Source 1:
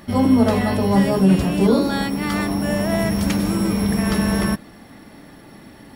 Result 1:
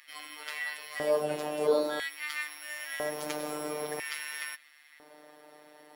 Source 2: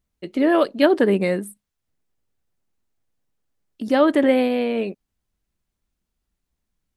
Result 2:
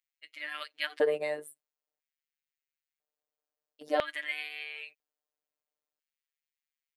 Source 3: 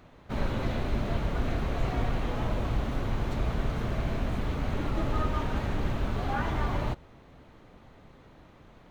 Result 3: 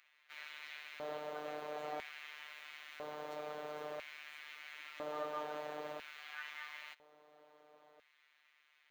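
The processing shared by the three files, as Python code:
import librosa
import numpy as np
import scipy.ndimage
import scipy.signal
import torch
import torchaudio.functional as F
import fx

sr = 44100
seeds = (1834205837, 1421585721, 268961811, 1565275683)

y = fx.robotise(x, sr, hz=150.0)
y = fx.filter_lfo_highpass(y, sr, shape='square', hz=0.5, low_hz=540.0, high_hz=2100.0, q=2.2)
y = y * 10.0 ** (-8.0 / 20.0)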